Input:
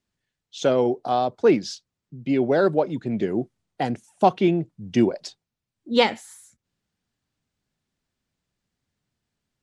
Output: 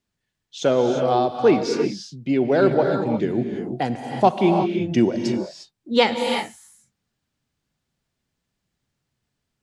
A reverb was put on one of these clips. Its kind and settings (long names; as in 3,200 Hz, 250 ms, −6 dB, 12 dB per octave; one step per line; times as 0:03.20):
reverb whose tail is shaped and stops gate 380 ms rising, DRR 3.5 dB
level +1 dB